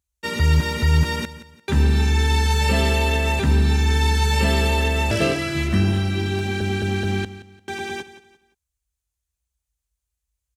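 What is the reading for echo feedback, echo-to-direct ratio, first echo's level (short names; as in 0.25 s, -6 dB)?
32%, -14.5 dB, -15.0 dB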